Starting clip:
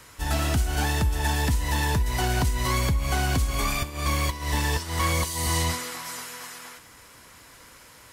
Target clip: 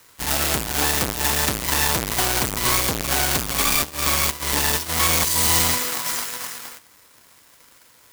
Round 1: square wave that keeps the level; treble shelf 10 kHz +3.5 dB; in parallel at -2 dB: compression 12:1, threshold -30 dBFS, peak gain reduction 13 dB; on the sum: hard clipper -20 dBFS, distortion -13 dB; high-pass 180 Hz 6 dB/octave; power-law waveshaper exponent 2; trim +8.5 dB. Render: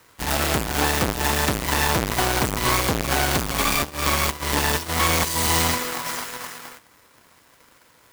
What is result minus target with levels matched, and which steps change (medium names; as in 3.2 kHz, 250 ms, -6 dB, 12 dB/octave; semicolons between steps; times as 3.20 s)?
8 kHz band -2.5 dB
add after high-pass: treble shelf 4.1 kHz +5.5 dB